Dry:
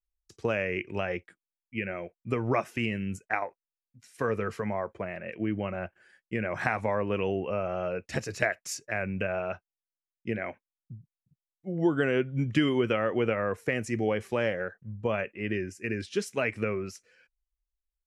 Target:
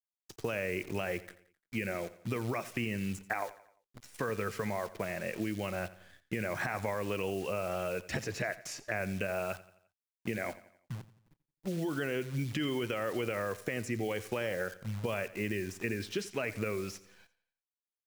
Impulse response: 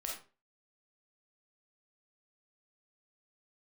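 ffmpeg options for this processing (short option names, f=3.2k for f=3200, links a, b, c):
-filter_complex "[0:a]adynamicequalizer=threshold=0.00398:dfrequency=220:dqfactor=7.2:tfrequency=220:tqfactor=7.2:attack=5:release=100:ratio=0.375:range=2:mode=cutabove:tftype=bell,acrusher=bits=9:dc=4:mix=0:aa=0.000001,alimiter=limit=-19.5dB:level=0:latency=1:release=27,acrossover=split=1900|3800[a][b][c];[a]acompressor=threshold=-37dB:ratio=4[d];[b]acompressor=threshold=-48dB:ratio=4[e];[c]acompressor=threshold=-51dB:ratio=4[f];[d][e][f]amix=inputs=3:normalize=0,asplit=2[g][h];[h]aecho=0:1:87|174|261|348:0.133|0.0627|0.0295|0.0138[i];[g][i]amix=inputs=2:normalize=0,volume=4dB"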